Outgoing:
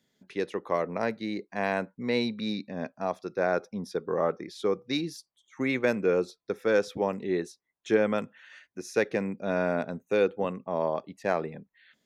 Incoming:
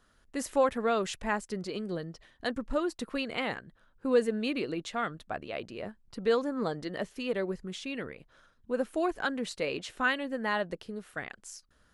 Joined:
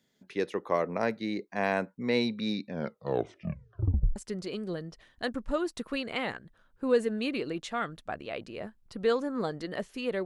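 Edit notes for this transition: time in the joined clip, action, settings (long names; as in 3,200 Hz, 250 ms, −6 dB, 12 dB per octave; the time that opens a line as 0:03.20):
outgoing
0:02.67: tape stop 1.49 s
0:04.16: continue with incoming from 0:01.38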